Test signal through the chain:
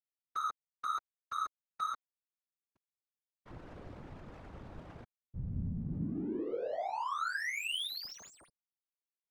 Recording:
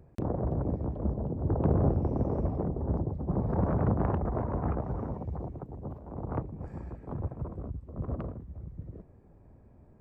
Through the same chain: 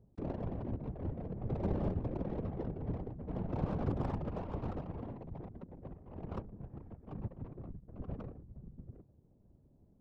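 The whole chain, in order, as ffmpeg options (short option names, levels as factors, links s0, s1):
-af "adynamicsmooth=sensitivity=5.5:basefreq=540,afftfilt=real='hypot(re,im)*cos(2*PI*random(0))':imag='hypot(re,im)*sin(2*PI*random(1))':win_size=512:overlap=0.75,volume=0.794"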